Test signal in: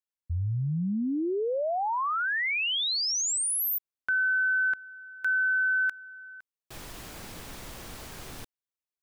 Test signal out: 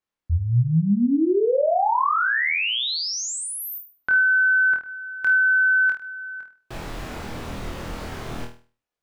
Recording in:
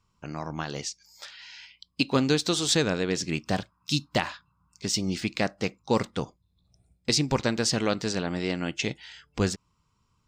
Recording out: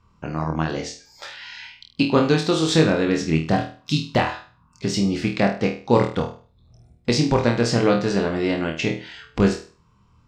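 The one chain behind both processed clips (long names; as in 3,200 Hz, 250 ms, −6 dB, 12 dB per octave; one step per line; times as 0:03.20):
low-pass filter 1,700 Hz 6 dB per octave
in parallel at −1 dB: downward compressor, threshold −43 dBFS
on the sum: flutter between parallel walls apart 4.3 metres, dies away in 0.38 s
level +5.5 dB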